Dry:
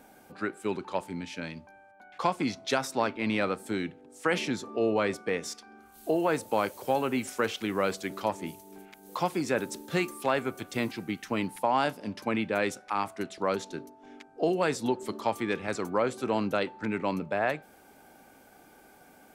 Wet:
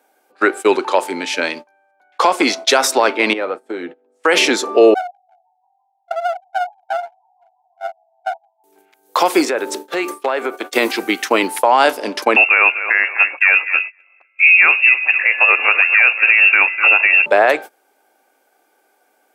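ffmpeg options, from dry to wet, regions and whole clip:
ffmpeg -i in.wav -filter_complex "[0:a]asettb=1/sr,asplit=3[link_01][link_02][link_03];[link_01]atrim=end=3.334[link_04];[link_02]atrim=start=3.33:end=4.24,asetpts=PTS-STARTPTS,afade=type=in:duration=0.004:curve=qsin,afade=type=out:start_time=0.906:duration=0.004:curve=qsin,lowpass=frequency=1000:poles=1,acompressor=threshold=-40dB:ratio=3:attack=3.2:release=140:knee=1:detection=peak,asplit=2[link_05][link_06];[link_06]adelay=12,volume=-9dB[link_07];[link_05][link_07]amix=inputs=2:normalize=0,atrim=end_sample=40131[link_08];[link_03]atrim=start=4.236[link_09];[link_04][link_08]acrossfade=duration=0.004:curve1=hsin:curve2=qsin[link_10];[link_10][link_09]acrossfade=duration=0.004:curve1=qsin:curve2=hsin,asettb=1/sr,asplit=3[link_11][link_12][link_13];[link_11]atrim=end=4.944[link_14];[link_12]atrim=start=4.94:end=8.64,asetpts=PTS-STARTPTS,afade=type=in:duration=0.004:curve=qsin,afade=type=out:start_time=3.696:duration=0.004:curve=qsin,asuperpass=centerf=720:order=12:qfactor=6.1,asplit=6[link_15][link_16][link_17][link_18][link_19][link_20];[link_16]adelay=166,afreqshift=52,volume=-17dB[link_21];[link_17]adelay=332,afreqshift=104,volume=-21.7dB[link_22];[link_18]adelay=498,afreqshift=156,volume=-26.5dB[link_23];[link_19]adelay=664,afreqshift=208,volume=-31.2dB[link_24];[link_20]adelay=830,afreqshift=260,volume=-35.9dB[link_25];[link_15][link_21][link_22][link_23][link_24][link_25]amix=inputs=6:normalize=0,atrim=end_sample=163170,aeval=exprs='clip(val(0),-1,0.00473)':channel_layout=same[link_26];[link_13]atrim=start=8.636[link_27];[link_14][link_26]acrossfade=duration=0.004:curve1=hsin:curve2=qsin[link_28];[link_28][link_27]acrossfade=duration=0.004:curve1=qsin:curve2=hsin,asettb=1/sr,asplit=3[link_29][link_30][link_31];[link_29]atrim=end=9.454[link_32];[link_30]atrim=start=9.45:end=10.73,asetpts=PTS-STARTPTS,afade=type=in:duration=0.004:curve=qsin,afade=type=out:start_time=1.276:duration=0.004:curve=qsin,highpass=170,highshelf=frequency=4200:gain=-10,acompressor=threshold=-34dB:ratio=6:attack=3.2:release=140:knee=1:detection=peak[link_33];[link_31]atrim=start=10.726[link_34];[link_32][link_33]acrossfade=duration=0.004:curve1=hsin:curve2=qsin[link_35];[link_35][link_34]acrossfade=duration=0.004:curve1=qsin:curve2=hsin,asettb=1/sr,asplit=3[link_36][link_37][link_38];[link_36]atrim=end=12.364[link_39];[link_37]atrim=start=12.36:end=17.26,asetpts=PTS-STARTPTS,afade=type=in:duration=0.004:curve=qsin,afade=type=out:start_time=4.896:duration=0.004:curve=qsin,aecho=1:1:246|492|738:0.158|0.0555|0.0194,atrim=end_sample=216090,lowpass=frequency=2500:width_type=q:width=0.5098,lowpass=frequency=2500:width_type=q:width=0.6013,lowpass=frequency=2500:width_type=q:width=0.9,lowpass=frequency=2500:width_type=q:width=2.563,afreqshift=-2900[link_40];[link_38]atrim=start=17.256[link_41];[link_39][link_40]acrossfade=duration=0.004:curve1=hsin:curve2=qsin[link_42];[link_42][link_41]acrossfade=duration=0.004:curve1=qsin:curve2=hsin,agate=range=-24dB:threshold=-43dB:ratio=16:detection=peak,highpass=frequency=350:width=0.5412,highpass=frequency=350:width=1.3066,alimiter=level_in=21.5dB:limit=-1dB:release=50:level=0:latency=1,volume=-1dB" out.wav

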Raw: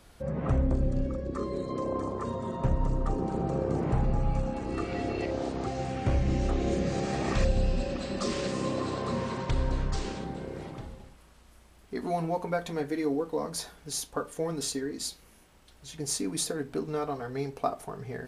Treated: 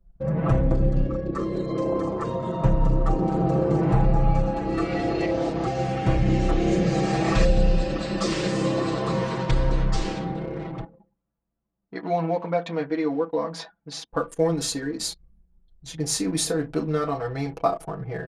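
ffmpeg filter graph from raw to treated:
ffmpeg -i in.wav -filter_complex "[0:a]asettb=1/sr,asplit=3[link_01][link_02][link_03];[link_01]atrim=end=10.844[link_04];[link_02]atrim=start=10.84:end=14.13,asetpts=PTS-STARTPTS,afade=type=in:duration=0.004:curve=qsin,afade=type=out:start_time=3.286:duration=0.004:curve=qsin,highpass=200,lowpass=4000,equalizer=frequency=380:width=2.6:gain=-7[link_05];[link_03]atrim=start=14.126[link_06];[link_04][link_05]acrossfade=duration=0.004:curve1=hsin:curve2=qsin[link_07];[link_07][link_06]acrossfade=duration=0.004:curve1=qsin:curve2=hsin,asettb=1/sr,asplit=3[link_08][link_09][link_10];[link_08]atrim=end=14.954[link_11];[link_09]atrim=start=14.95:end=17.77,asetpts=PTS-STARTPTS,afade=type=in:duration=0.004:curve=qsin,afade=type=out:start_time=2.816:duration=0.004:curve=qsin,aeval=exprs='val(0)+0.000501*(sin(2*PI*60*n/s)+sin(2*PI*2*60*n/s)/2+sin(2*PI*3*60*n/s)/3+sin(2*PI*4*60*n/s)/4+sin(2*PI*5*60*n/s)/5)':channel_layout=same,asplit=2[link_12][link_13];[link_13]adelay=32,volume=-10.5dB[link_14];[link_12][link_14]amix=inputs=2:normalize=0,atrim=end_sample=124362[link_15];[link_10]atrim=start=17.766[link_16];[link_11][link_15]acrossfade=duration=0.004:curve1=hsin:curve2=qsin[link_17];[link_17][link_16]acrossfade=duration=0.004:curve1=qsin:curve2=hsin,anlmdn=0.0398,highshelf=frequency=9600:gain=-7.5,aecho=1:1:6.1:0.92,volume=4.5dB" out.wav

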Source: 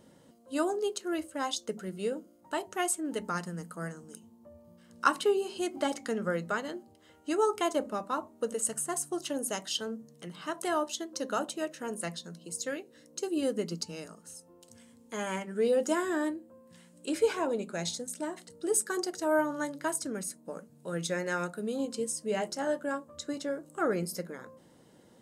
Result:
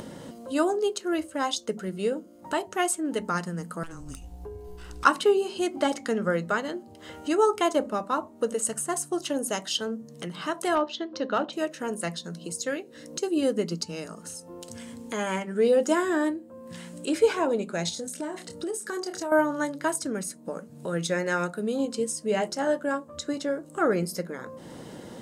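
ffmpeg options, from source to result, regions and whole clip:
ffmpeg -i in.wav -filter_complex "[0:a]asettb=1/sr,asplit=3[link_01][link_02][link_03];[link_01]atrim=end=3.834[link_04];[link_02]atrim=start=3.83:end=5.05,asetpts=PTS-STARTPTS,afade=type=in:duration=0.004:curve=qsin,afade=type=out:start_time=1.216:duration=0.004:curve=qsin,afreqshift=-170,aeval=exprs='(tanh(112*val(0)+0.25)-tanh(0.25))/112':channel_layout=same[link_05];[link_03]atrim=start=5.046[link_06];[link_04][link_05]acrossfade=duration=0.004:curve1=hsin:curve2=qsin[link_07];[link_07][link_06]acrossfade=duration=0.004:curve1=qsin:curve2=hsin,asettb=1/sr,asplit=3[link_08][link_09][link_10];[link_08]atrim=end=10.754[link_11];[link_09]atrim=start=10.75:end=11.53,asetpts=PTS-STARTPTS,afade=type=in:duration=0.004:curve=qsin,afade=type=out:start_time=0.776:duration=0.004:curve=qsin,lowpass=frequency=4400:width=0.5412,lowpass=frequency=4400:width=1.3066,asoftclip=type=hard:threshold=-23dB[link_12];[link_10]atrim=start=11.526[link_13];[link_11][link_12]acrossfade=duration=0.004:curve1=hsin:curve2=qsin[link_14];[link_14][link_13]acrossfade=duration=0.004:curve1=qsin:curve2=hsin,asettb=1/sr,asplit=3[link_15][link_16][link_17];[link_15]atrim=end=17.894[link_18];[link_16]atrim=start=17.89:end=19.32,asetpts=PTS-STARTPTS,afade=type=in:duration=0.004:curve=qsin,afade=type=out:start_time=1.426:duration=0.004:curve=qsin,asplit=2[link_19][link_20];[link_20]adelay=27,volume=-8dB[link_21];[link_19][link_21]amix=inputs=2:normalize=0,atrim=end_sample=63063,acompressor=threshold=-35dB:ratio=4:attack=3.2:release=140:knee=1:detection=peak[link_22];[link_17]atrim=start=19.316[link_23];[link_18][link_22]acrossfade=duration=0.004:curve1=hsin:curve2=qsin[link_24];[link_24][link_23]acrossfade=duration=0.004:curve1=qsin:curve2=hsin,acompressor=mode=upward:threshold=-35dB:ratio=2.5,highshelf=frequency=8400:gain=-6,volume=5.5dB" out.wav

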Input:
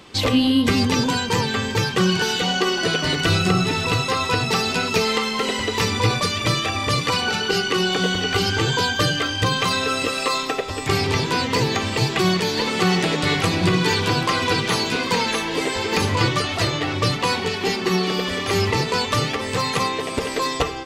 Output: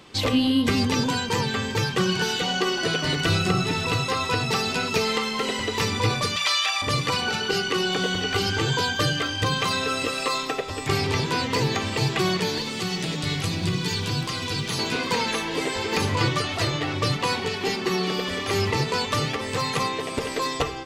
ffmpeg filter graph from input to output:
ffmpeg -i in.wav -filter_complex "[0:a]asettb=1/sr,asplit=3[link_01][link_02][link_03];[link_01]atrim=end=6.364[link_04];[link_02]atrim=start=6.36:end=6.82,asetpts=PTS-STARTPTS,afade=type=in:duration=0.004:curve=qsin,afade=type=out:start_time=0.456:duration=0.004:curve=qsin,acrossover=split=5800[link_05][link_06];[link_06]acompressor=threshold=-43dB:ratio=4:attack=1:release=60[link_07];[link_05][link_07]amix=inputs=2:normalize=0,highpass=frequency=810:width_type=q:width=1.8,tiltshelf=frequency=1500:gain=-9.5[link_08];[link_03]atrim=start=6.816[link_09];[link_04][link_08]acrossfade=duration=0.004:curve1=hsin:curve2=qsin[link_10];[link_10][link_09]acrossfade=duration=0.004:curve1=qsin:curve2=hsin,asettb=1/sr,asplit=3[link_11][link_12][link_13];[link_11]atrim=end=12.584[link_14];[link_12]atrim=start=12.58:end=14.79,asetpts=PTS-STARTPTS,afade=type=in:duration=0.004:curve=qsin,afade=type=out:start_time=2.206:duration=0.004:curve=qsin,acrossover=split=230|3000[link_15][link_16][link_17];[link_16]acompressor=threshold=-35dB:ratio=2:attack=3.2:release=140:knee=2.83:detection=peak[link_18];[link_15][link_18][link_17]amix=inputs=3:normalize=0,acrusher=bits=8:mix=0:aa=0.5[link_19];[link_13]atrim=start=14.786[link_20];[link_14][link_19]acrossfade=duration=0.004:curve1=hsin:curve2=qsin[link_21];[link_21][link_20]acrossfade=duration=0.004:curve1=qsin:curve2=hsin,equalizer=frequency=140:width=4.9:gain=4,bandreject=frequency=60:width_type=h:width=6,bandreject=frequency=120:width_type=h:width=6,bandreject=frequency=180:width_type=h:width=6,volume=-3.5dB" out.wav

